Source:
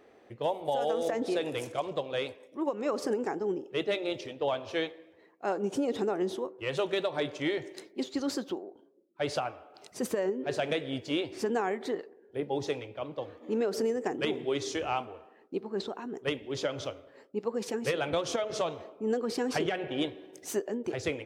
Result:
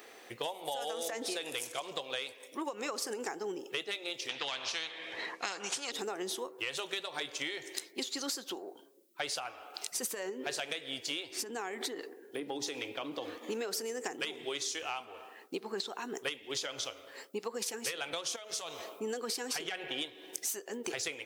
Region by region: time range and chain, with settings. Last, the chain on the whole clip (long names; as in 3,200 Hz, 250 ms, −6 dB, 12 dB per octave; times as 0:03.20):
0:04.29–0:05.92: low-pass filter 4,900 Hz + every bin compressed towards the loudest bin 2 to 1
0:11.38–0:13.38: parametric band 290 Hz +10 dB 0.67 octaves + downward compressor 3 to 1, threshold −35 dBFS
0:18.36–0:19.00: high-shelf EQ 7,600 Hz +9 dB + downward compressor 2 to 1, threshold −45 dBFS
whole clip: spectral tilt +4.5 dB per octave; notch filter 600 Hz, Q 12; downward compressor 10 to 1, threshold −41 dBFS; level +7 dB